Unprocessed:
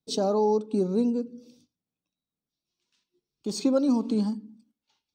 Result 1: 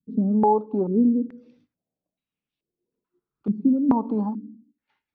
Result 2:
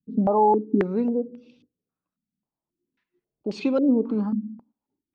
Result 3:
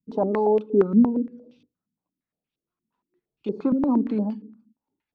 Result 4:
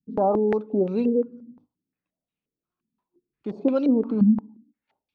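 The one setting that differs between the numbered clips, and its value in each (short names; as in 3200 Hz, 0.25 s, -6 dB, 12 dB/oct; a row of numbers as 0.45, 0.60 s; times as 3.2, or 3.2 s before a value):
stepped low-pass, rate: 2.3, 3.7, 8.6, 5.7 Hz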